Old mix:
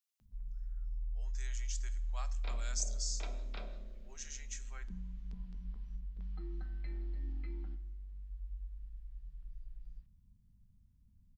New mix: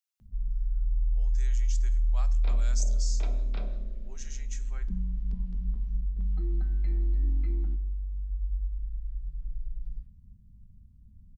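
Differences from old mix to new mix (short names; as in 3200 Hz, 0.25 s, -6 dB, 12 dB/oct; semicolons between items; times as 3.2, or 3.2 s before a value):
first sound: send on; master: add low shelf 490 Hz +12 dB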